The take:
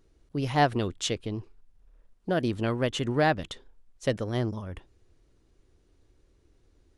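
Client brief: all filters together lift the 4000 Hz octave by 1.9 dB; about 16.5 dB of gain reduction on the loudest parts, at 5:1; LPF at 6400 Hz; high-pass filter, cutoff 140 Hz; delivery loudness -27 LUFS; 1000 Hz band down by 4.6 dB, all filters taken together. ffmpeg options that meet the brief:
-af "highpass=140,lowpass=6.4k,equalizer=f=1k:t=o:g=-7.5,equalizer=f=4k:t=o:g=3.5,acompressor=threshold=-40dB:ratio=5,volume=17dB"

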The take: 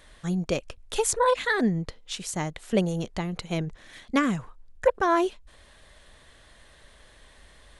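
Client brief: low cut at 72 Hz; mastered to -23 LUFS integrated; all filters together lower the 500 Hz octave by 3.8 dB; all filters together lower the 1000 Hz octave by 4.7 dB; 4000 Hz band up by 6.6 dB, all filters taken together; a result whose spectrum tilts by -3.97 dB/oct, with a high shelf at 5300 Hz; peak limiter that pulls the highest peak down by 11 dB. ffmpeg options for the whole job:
-af "highpass=72,equalizer=f=500:t=o:g=-3.5,equalizer=f=1k:t=o:g=-5,equalizer=f=4k:t=o:g=6,highshelf=f=5.3k:g=6.5,volume=7dB,alimiter=limit=-11dB:level=0:latency=1"

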